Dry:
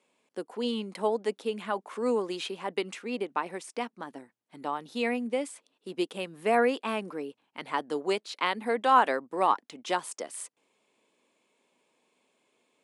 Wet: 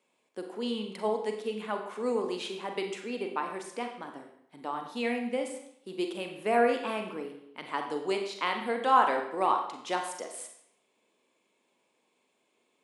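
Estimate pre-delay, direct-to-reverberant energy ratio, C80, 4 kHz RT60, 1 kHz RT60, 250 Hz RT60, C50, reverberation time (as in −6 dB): 35 ms, 3.5 dB, 9.0 dB, 0.65 s, 0.70 s, 0.70 s, 7.0 dB, 0.70 s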